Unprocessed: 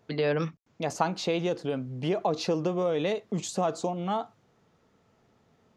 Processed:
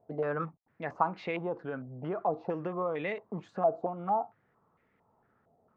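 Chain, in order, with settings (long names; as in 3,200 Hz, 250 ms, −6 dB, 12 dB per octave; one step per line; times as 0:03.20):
low-pass on a step sequencer 4.4 Hz 700–2,100 Hz
level −8 dB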